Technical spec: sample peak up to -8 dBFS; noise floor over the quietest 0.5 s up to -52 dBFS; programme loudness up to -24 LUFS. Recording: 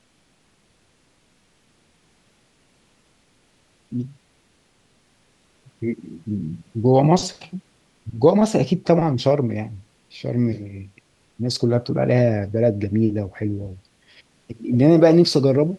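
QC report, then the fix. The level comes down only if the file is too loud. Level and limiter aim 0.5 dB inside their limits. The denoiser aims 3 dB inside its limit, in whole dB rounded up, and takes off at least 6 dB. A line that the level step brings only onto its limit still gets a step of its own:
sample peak -2.0 dBFS: fail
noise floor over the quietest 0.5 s -61 dBFS: OK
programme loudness -20.0 LUFS: fail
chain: gain -4.5 dB; limiter -8.5 dBFS

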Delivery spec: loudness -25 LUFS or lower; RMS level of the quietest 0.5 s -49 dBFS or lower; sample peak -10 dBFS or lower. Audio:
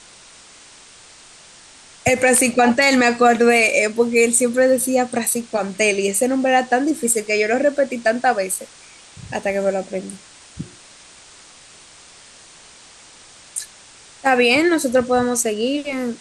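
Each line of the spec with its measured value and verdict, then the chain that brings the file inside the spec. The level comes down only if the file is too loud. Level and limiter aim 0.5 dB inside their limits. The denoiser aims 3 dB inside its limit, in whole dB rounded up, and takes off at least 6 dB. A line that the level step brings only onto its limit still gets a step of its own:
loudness -17.5 LUFS: fail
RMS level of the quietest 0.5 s -45 dBFS: fail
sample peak -5.0 dBFS: fail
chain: gain -8 dB

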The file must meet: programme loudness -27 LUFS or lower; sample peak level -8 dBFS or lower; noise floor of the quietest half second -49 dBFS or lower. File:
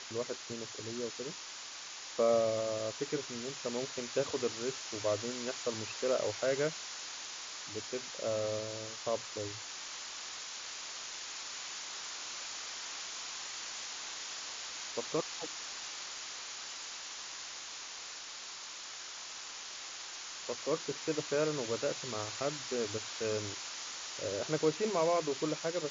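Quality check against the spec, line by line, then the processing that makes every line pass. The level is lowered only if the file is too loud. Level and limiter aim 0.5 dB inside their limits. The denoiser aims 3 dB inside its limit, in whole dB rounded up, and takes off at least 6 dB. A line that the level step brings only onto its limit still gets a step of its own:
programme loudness -37.0 LUFS: OK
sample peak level -18.5 dBFS: OK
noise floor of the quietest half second -46 dBFS: fail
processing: denoiser 6 dB, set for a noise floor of -46 dBFS

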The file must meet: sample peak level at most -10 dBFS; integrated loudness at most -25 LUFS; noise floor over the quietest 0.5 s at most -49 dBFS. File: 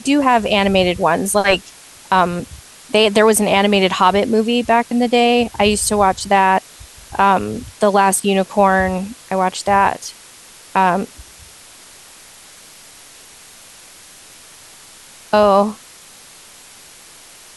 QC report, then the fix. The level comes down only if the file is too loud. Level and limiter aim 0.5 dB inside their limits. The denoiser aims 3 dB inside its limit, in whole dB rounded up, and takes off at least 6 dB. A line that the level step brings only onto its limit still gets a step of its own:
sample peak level -1.5 dBFS: fail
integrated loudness -15.5 LUFS: fail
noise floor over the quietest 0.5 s -42 dBFS: fail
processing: gain -10 dB

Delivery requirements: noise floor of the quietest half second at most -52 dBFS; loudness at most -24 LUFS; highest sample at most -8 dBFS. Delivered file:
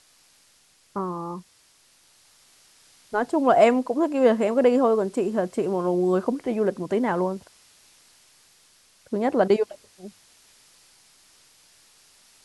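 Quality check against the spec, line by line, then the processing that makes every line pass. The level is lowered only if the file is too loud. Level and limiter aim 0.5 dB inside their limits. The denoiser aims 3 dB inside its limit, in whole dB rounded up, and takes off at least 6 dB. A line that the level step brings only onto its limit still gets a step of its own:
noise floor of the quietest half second -60 dBFS: OK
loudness -23.0 LUFS: fail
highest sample -5.0 dBFS: fail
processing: gain -1.5 dB; limiter -8.5 dBFS

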